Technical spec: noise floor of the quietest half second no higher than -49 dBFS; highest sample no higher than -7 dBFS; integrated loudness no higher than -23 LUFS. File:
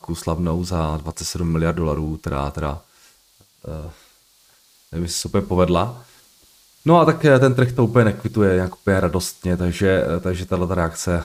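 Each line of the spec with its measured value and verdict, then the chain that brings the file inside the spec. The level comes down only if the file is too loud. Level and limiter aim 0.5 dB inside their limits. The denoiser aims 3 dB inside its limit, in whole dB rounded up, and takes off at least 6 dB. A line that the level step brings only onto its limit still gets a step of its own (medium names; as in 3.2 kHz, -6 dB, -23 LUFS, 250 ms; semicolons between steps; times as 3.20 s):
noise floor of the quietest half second -56 dBFS: pass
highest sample -3.5 dBFS: fail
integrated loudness -19.5 LUFS: fail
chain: trim -4 dB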